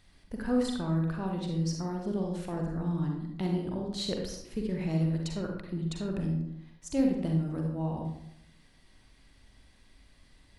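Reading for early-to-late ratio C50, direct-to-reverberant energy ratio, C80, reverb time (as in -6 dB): 2.5 dB, 1.0 dB, 6.5 dB, 0.75 s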